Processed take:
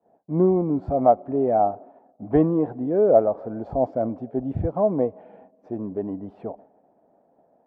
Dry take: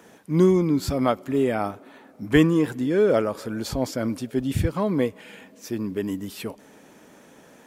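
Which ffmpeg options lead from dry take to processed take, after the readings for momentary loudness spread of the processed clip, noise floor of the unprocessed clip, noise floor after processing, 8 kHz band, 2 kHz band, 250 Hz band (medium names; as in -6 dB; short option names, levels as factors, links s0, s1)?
14 LU, -52 dBFS, -63 dBFS, under -40 dB, under -15 dB, -2.0 dB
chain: -af "agate=range=0.0224:threshold=0.00891:ratio=3:detection=peak,lowpass=f=710:t=q:w=5.9,volume=0.668"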